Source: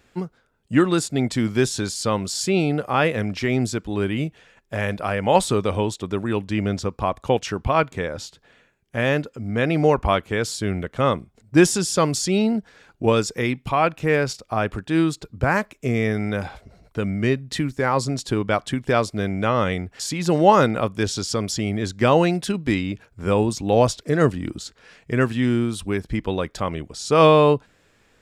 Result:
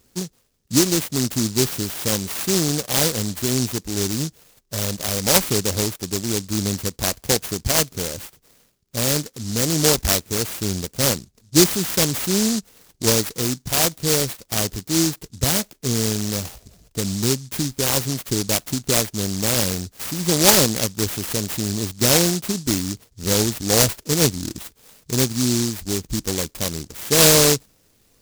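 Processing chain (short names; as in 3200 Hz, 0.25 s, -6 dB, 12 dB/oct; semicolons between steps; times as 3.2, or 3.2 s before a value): noise-modulated delay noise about 5700 Hz, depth 0.3 ms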